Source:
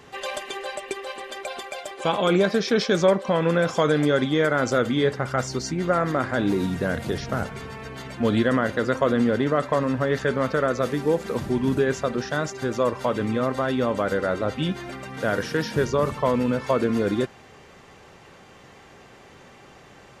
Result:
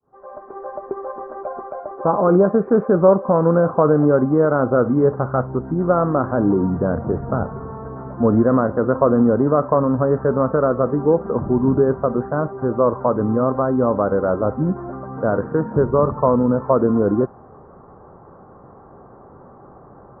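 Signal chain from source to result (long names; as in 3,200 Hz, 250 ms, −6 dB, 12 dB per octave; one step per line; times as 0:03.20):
fade in at the beginning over 1.00 s
Butterworth low-pass 1,300 Hz 48 dB per octave
level +6 dB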